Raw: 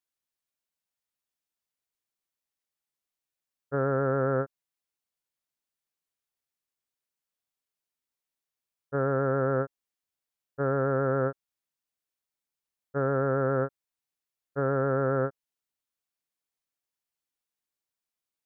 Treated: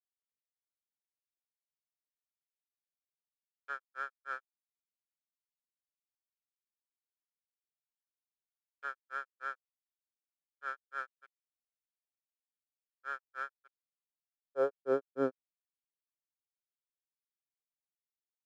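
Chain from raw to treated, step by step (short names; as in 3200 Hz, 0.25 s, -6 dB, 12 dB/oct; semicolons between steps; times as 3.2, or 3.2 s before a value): backlash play -39.5 dBFS; high-pass sweep 1600 Hz -> 130 Hz, 13.58–15.87; grains 0.164 s, grains 3.3/s, spray 0.1 s, pitch spread up and down by 0 st; gain -4.5 dB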